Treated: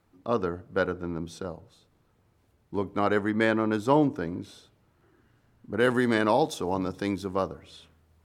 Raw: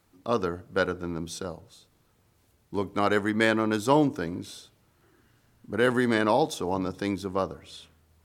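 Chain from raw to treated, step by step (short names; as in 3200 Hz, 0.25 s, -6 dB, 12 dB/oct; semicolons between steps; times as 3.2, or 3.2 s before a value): high shelf 3200 Hz -11 dB, from 5.8 s -2 dB, from 7.48 s -7.5 dB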